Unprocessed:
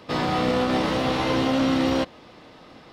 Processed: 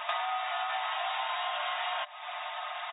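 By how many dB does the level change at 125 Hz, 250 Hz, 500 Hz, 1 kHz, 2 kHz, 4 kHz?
under -40 dB, under -40 dB, -15.5 dB, -3.5 dB, -3.5 dB, -5.0 dB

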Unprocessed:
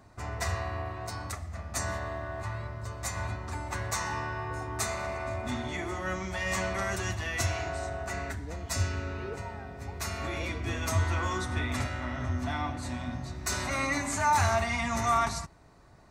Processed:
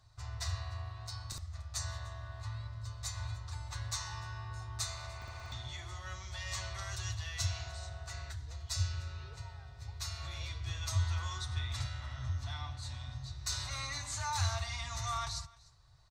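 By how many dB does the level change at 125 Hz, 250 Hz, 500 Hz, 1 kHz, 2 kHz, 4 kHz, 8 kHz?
-4.0, -21.5, -18.0, -12.5, -12.0, -1.0, -5.0 dB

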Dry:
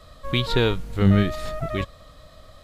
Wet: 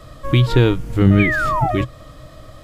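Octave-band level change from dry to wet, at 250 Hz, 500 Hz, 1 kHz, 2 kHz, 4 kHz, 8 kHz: +5.5 dB, +4.5 dB, +10.5 dB, +9.5 dB, -0.5 dB, n/a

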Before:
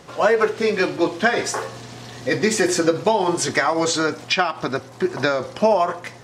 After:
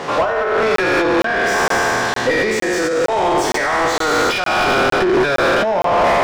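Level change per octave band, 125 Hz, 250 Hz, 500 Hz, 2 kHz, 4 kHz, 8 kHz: +1.5, +2.5, +4.0, +7.0, +4.0, 0.0 dB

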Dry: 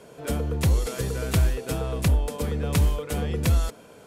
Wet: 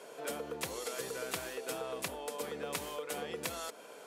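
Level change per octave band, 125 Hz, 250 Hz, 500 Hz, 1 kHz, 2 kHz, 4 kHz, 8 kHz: -31.0, -17.0, -7.5, -6.0, -6.0, -6.5, -6.0 dB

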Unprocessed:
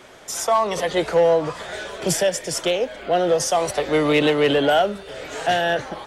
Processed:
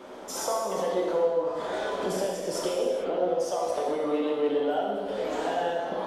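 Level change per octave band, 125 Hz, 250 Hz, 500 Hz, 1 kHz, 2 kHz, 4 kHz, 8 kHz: -14.5, -7.5, -6.5, -8.0, -13.5, -13.0, -11.0 dB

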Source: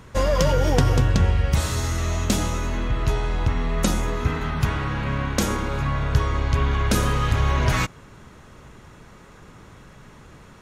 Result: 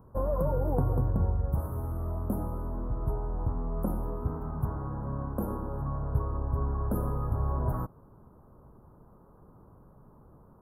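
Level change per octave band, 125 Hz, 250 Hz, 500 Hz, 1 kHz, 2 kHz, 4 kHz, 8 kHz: -8.5 dB, -8.5 dB, -8.5 dB, -11.0 dB, -28.0 dB, under -40 dB, under -25 dB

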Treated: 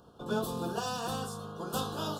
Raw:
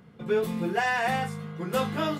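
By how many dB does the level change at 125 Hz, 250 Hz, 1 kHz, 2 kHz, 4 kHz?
-5.5, -6.0, -7.5, -14.5, -2.0 dB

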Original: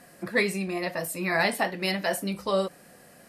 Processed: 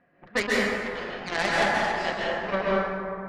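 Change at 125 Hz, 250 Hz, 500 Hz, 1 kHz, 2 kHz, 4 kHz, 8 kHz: -2.5, -1.0, +1.5, +4.5, +2.5, +1.0, -4.0 dB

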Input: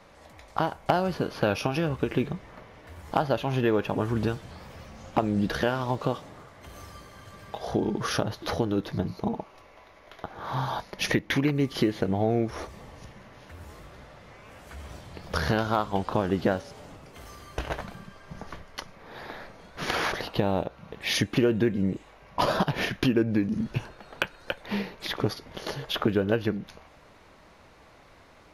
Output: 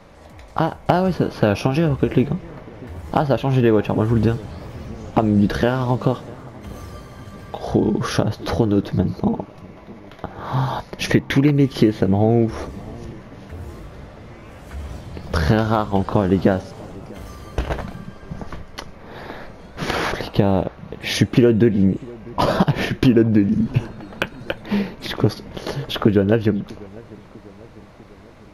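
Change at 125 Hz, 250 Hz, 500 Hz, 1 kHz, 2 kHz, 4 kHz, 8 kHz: +11.0, +10.0, +7.5, +5.5, +4.0, +3.5, +3.5 dB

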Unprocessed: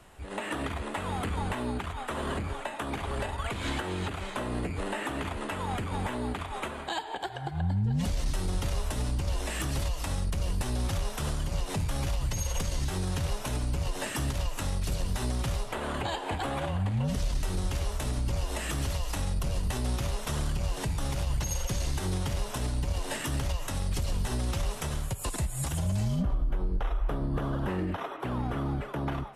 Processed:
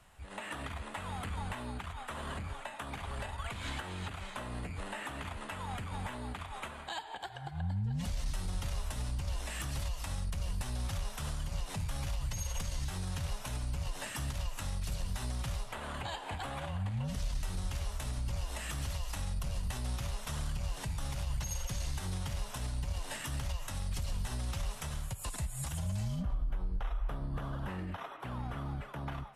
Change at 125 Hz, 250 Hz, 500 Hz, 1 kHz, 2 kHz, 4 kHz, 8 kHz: -6.5, -9.5, -11.0, -7.0, -6.0, -5.5, -5.5 dB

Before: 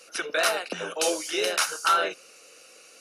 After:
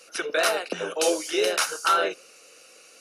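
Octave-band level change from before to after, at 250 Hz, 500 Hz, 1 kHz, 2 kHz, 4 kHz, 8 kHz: +4.0, +3.5, +0.5, 0.0, 0.0, 0.0 dB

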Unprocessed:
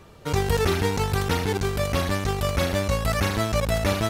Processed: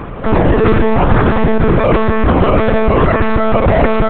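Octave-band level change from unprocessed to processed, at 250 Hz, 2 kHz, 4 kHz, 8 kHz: +15.0 dB, +9.5 dB, 0.0 dB, under -35 dB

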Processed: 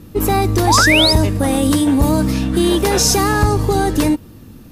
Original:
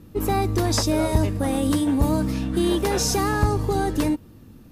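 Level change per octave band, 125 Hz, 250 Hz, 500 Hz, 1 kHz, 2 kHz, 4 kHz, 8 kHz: +6.5, +6.5, +6.5, +8.5, +14.0, +13.5, +10.0 dB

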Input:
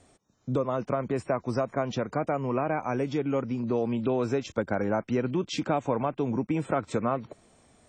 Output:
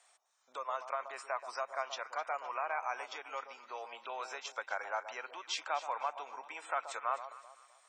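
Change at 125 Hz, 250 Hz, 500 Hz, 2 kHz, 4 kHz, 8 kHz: under -40 dB, -37.5 dB, -15.0 dB, -2.0 dB, -2.0 dB, -2.0 dB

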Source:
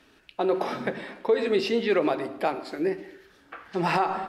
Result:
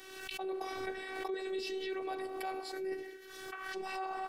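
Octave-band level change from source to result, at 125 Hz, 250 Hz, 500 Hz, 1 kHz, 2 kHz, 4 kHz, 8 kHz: under -25 dB, -14.5 dB, -13.5 dB, -11.5 dB, -8.5 dB, -8.0 dB, n/a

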